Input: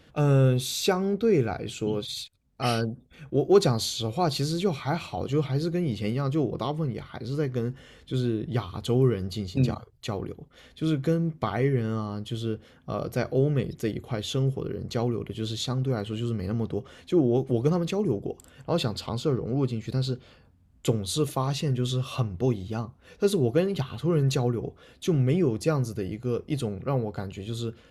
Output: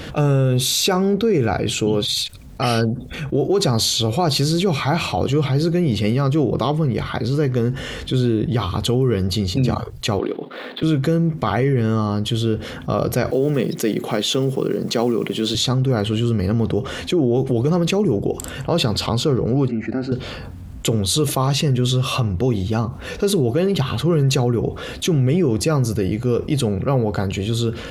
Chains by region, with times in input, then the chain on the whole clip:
10.19–10.83 s: median filter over 15 samples + high-pass 250 Hz 24 dB/octave + resonant high shelf 4.8 kHz -10 dB, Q 3
13.31–15.55 s: block-companded coder 7-bit + high-pass 170 Hz 24 dB/octave
19.68–20.12 s: band-pass 110–2000 Hz + static phaser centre 700 Hz, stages 8
whole clip: peak limiter -17.5 dBFS; level flattener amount 50%; trim +6.5 dB

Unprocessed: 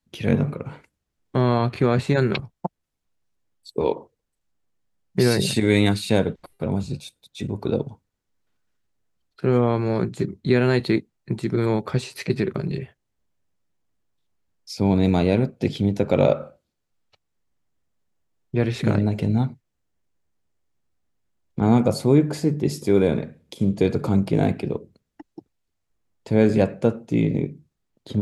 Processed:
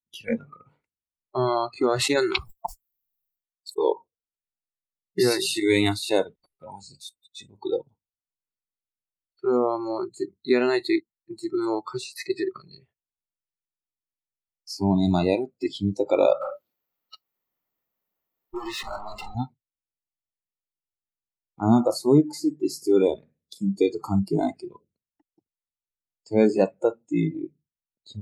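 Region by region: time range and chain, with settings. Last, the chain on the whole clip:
1.96–3.86 s: expander -42 dBFS + treble shelf 2.5 kHz +7.5 dB + decay stretcher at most 67 dB/s
16.41–19.35 s: dynamic bell 1.8 kHz, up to -4 dB, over -42 dBFS, Q 0.97 + compression 3:1, threshold -30 dBFS + overdrive pedal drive 34 dB, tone 2.1 kHz, clips at -19 dBFS
whole clip: spectral noise reduction 26 dB; band-stop 1.6 kHz, Q 10

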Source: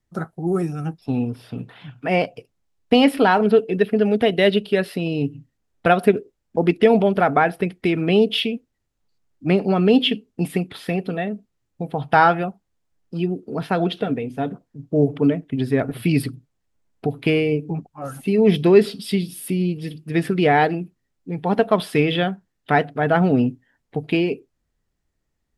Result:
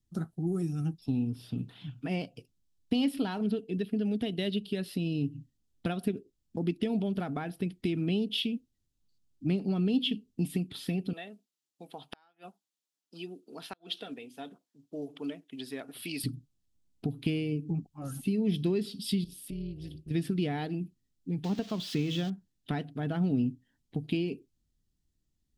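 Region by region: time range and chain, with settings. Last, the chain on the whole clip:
11.13–16.24 s: high-pass 630 Hz + inverted gate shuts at -11 dBFS, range -37 dB
19.24–20.11 s: compression 2:1, threshold -35 dBFS + treble shelf 9.5 kHz -7 dB + AM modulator 220 Hz, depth 65%
21.44–22.30 s: zero-crossing glitches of -12.5 dBFS + distance through air 220 m
whole clip: compression 2:1, threshold -26 dBFS; high-order bell 1 kHz -12 dB 2.8 oct; trim -2.5 dB

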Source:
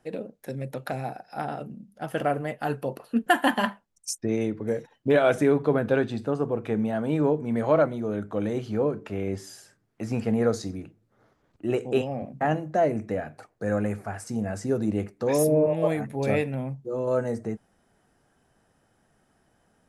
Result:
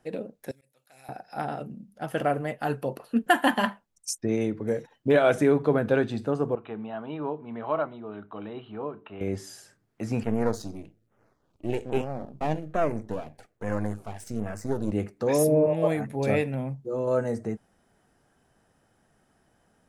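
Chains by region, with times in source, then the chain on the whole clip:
0.51–1.09 s: pre-emphasis filter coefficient 0.97 + slow attack 131 ms
6.55–9.21 s: rippled Chebyshev low-pass 4 kHz, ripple 9 dB + bass shelf 130 Hz -8.5 dB + band-stop 520 Hz, Q 6.2
10.23–14.92 s: partial rectifier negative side -12 dB + LFO notch saw down 1.2 Hz 830–5200 Hz
whole clip: none

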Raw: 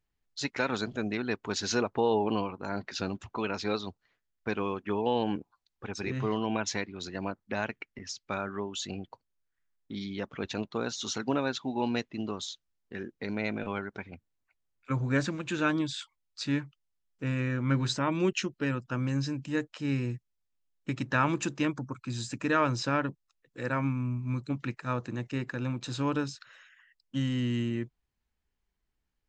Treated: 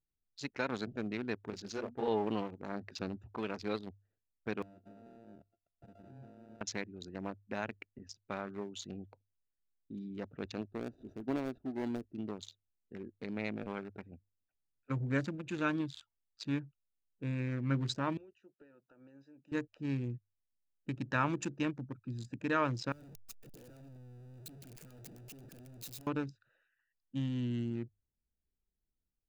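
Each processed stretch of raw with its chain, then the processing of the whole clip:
1.50–2.08 s: low-pass 6.9 kHz 24 dB/octave + hum notches 60/120/180/240 Hz + detune thickener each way 57 cents
4.62–6.61 s: sorted samples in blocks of 64 samples + compression 8:1, threshold -42 dBFS + loudspeaker Doppler distortion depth 0.28 ms
10.61–12.15 s: median filter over 41 samples + comb 3 ms, depth 33%
18.17–19.52 s: high-pass 580 Hz + compression 12:1, threshold -44 dBFS
22.92–26.07 s: one-bit comparator + pre-emphasis filter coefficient 0.8
whole clip: local Wiener filter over 41 samples; hum notches 50/100 Hz; level rider gain up to 3 dB; trim -8 dB

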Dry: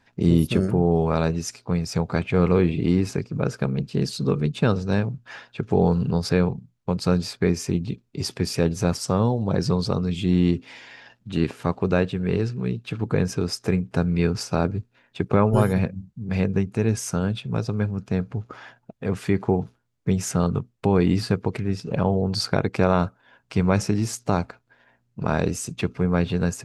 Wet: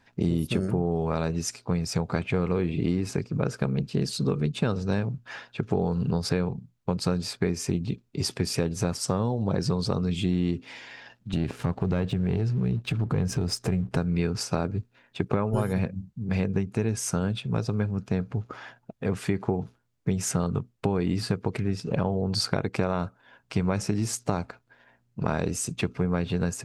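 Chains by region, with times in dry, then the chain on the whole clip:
11.33–13.97 s: bass shelf 190 Hz +11.5 dB + waveshaping leveller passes 1 + compression 2.5:1, threshold -25 dBFS
whole clip: dynamic bell 8.6 kHz, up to +3 dB, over -53 dBFS, Q 2.7; compression, threshold -21 dBFS

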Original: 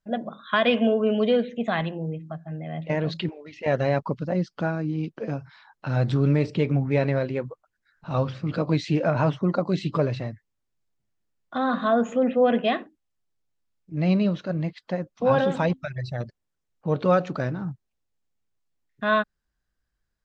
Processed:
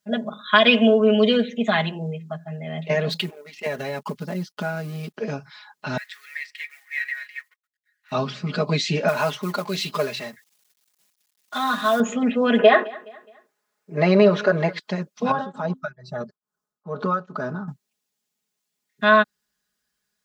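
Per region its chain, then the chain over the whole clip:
3.09–5.14 s: companding laws mixed up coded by A + compression, threshold -25 dBFS
5.97–8.12 s: companding laws mixed up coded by A + ladder high-pass 1.8 kHz, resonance 85%
9.08–12.00 s: companding laws mixed up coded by mu + bass shelf 460 Hz -11 dB
12.59–14.79 s: high-order bell 830 Hz +13.5 dB 2.8 oct + compression 4:1, threshold -14 dBFS + feedback delay 210 ms, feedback 39%, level -21 dB
15.31–17.68 s: resonant high shelf 1.7 kHz -9 dB, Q 3 + compression 2.5:1, threshold -24 dBFS + tremolo of two beating tones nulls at 2.3 Hz
whole clip: high-pass 140 Hz; treble shelf 2.5 kHz +11 dB; comb 4.8 ms, depth 95%

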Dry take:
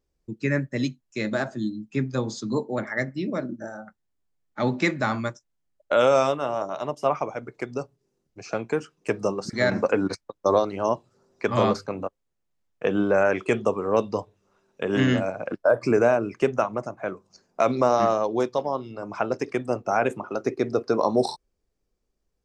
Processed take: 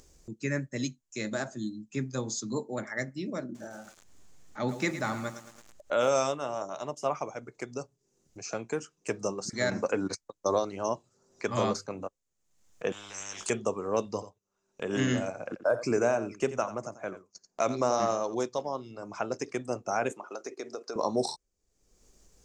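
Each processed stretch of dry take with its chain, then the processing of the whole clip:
3.44–6.09 s: treble shelf 5.7 kHz -8.5 dB + upward compressor, threshold -42 dBFS + bit-crushed delay 109 ms, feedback 55%, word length 7-bit, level -11 dB
12.92–13.50 s: compression 2:1, threshold -33 dBFS + doubling 19 ms -6 dB + spectrum-flattening compressor 10:1
14.05–18.35 s: gate -53 dBFS, range -16 dB + delay 87 ms -13.5 dB
20.12–20.96 s: high-pass 390 Hz + compression 5:1, threshold -26 dBFS
whole clip: upward compressor, threshold -34 dBFS; peaking EQ 6.8 kHz +13.5 dB 0.78 oct; trim -7 dB

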